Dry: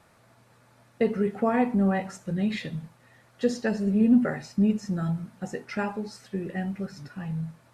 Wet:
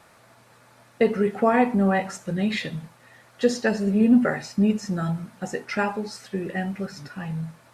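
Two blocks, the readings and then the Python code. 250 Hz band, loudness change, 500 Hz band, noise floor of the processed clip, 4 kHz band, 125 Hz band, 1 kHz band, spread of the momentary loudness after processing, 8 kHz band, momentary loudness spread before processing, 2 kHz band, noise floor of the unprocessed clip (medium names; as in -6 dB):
+2.0 dB, +3.0 dB, +5.0 dB, -55 dBFS, +7.0 dB, +1.5 dB, +6.0 dB, 13 LU, no reading, 13 LU, +7.0 dB, -60 dBFS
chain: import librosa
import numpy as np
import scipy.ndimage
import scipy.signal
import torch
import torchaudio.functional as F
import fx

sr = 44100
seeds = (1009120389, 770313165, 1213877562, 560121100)

y = fx.low_shelf(x, sr, hz=300.0, db=-7.5)
y = F.gain(torch.from_numpy(y), 7.0).numpy()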